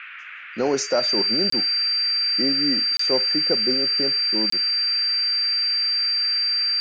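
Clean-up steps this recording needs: band-stop 4.7 kHz, Q 30; interpolate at 1.50/2.97/4.50 s, 24 ms; noise print and reduce 30 dB

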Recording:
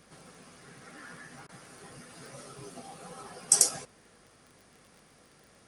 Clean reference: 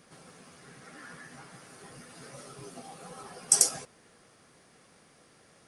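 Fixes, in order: de-click; de-hum 50 Hz, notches 5; interpolate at 1.47 s, 19 ms

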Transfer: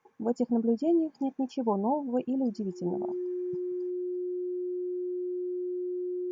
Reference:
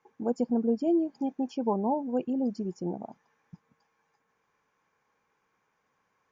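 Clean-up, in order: band-stop 360 Hz, Q 30; trim 0 dB, from 3.90 s +9 dB

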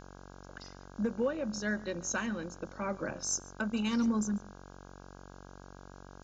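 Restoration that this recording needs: de-hum 46.8 Hz, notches 35; noise print and reduce 28 dB; inverse comb 142 ms -22 dB

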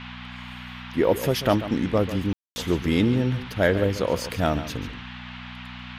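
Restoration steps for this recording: de-hum 61.3 Hz, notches 4; room tone fill 2.33–2.56 s; noise print and reduce 30 dB; inverse comb 141 ms -13 dB

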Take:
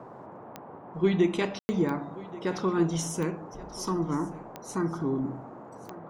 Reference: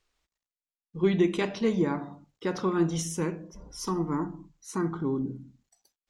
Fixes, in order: de-click; room tone fill 1.59–1.69 s; noise print and reduce 30 dB; inverse comb 1131 ms -19 dB

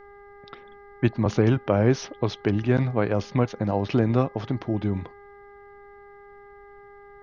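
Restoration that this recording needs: de-hum 404.8 Hz, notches 5; expander -40 dBFS, range -21 dB

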